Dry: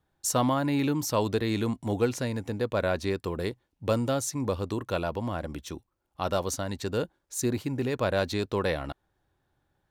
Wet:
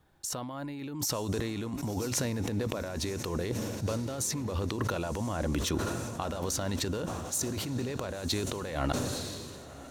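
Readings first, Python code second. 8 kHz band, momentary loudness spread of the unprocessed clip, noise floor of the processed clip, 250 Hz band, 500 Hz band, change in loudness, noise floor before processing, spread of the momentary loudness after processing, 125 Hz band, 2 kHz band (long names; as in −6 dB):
+1.5 dB, 9 LU, −46 dBFS, −4.0 dB, −6.0 dB, −3.5 dB, −78 dBFS, 6 LU, −1.5 dB, −4.5 dB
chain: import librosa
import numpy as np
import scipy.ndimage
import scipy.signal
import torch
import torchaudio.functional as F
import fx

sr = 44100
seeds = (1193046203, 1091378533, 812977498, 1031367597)

p1 = fx.over_compress(x, sr, threshold_db=-36.0, ratio=-1.0)
p2 = p1 + fx.echo_diffused(p1, sr, ms=1023, feedback_pct=59, wet_db=-14.5, dry=0)
p3 = fx.sustainer(p2, sr, db_per_s=25.0)
y = p3 * 10.0 ** (1.0 / 20.0)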